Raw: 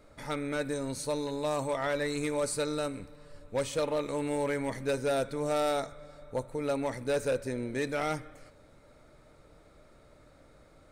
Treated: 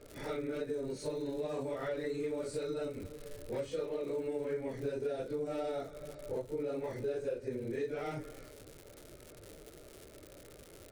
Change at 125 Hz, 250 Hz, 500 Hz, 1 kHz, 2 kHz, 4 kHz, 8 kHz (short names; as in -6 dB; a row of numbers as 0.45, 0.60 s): -6.5, -6.0, -4.5, -11.5, -11.0, -11.0, -13.0 dB